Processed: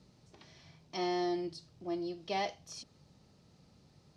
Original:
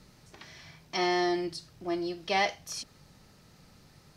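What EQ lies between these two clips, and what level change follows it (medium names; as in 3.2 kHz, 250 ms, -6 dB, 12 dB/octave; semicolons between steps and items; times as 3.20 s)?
high-pass 58 Hz; distance through air 71 m; peaking EQ 1.7 kHz -9 dB 1.4 oct; -4.0 dB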